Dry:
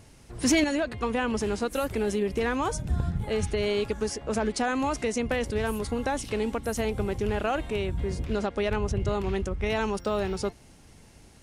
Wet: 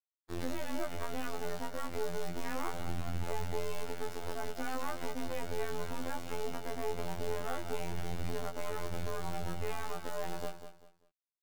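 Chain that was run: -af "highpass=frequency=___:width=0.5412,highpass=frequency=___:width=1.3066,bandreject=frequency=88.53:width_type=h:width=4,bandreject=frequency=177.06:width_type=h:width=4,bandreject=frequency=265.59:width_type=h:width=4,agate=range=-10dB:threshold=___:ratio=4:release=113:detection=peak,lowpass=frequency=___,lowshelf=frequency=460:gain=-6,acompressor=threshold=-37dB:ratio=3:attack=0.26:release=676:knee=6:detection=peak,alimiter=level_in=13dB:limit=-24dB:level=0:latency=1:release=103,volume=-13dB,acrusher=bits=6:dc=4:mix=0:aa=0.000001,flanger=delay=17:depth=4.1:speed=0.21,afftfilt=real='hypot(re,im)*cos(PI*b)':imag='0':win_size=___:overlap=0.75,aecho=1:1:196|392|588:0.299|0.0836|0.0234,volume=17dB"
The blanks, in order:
51, 51, -47dB, 1300, 2048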